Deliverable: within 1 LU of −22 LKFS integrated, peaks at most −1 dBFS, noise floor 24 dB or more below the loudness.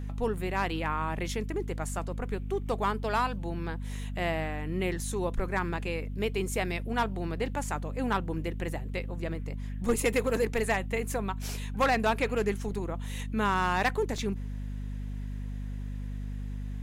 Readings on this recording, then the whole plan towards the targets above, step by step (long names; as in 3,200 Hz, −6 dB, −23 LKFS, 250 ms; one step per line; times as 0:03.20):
number of dropouts 2; longest dropout 2.4 ms; mains hum 50 Hz; hum harmonics up to 250 Hz; level of the hum −33 dBFS; integrated loudness −31.5 LKFS; sample peak −16.5 dBFS; target loudness −22.0 LKFS
→ repair the gap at 0:00.70/0:14.18, 2.4 ms
mains-hum notches 50/100/150/200/250 Hz
level +9.5 dB